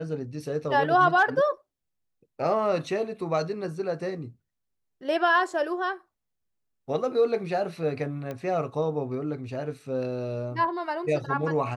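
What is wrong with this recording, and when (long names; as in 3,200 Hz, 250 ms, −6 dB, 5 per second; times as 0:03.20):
0:08.31: click −22 dBFS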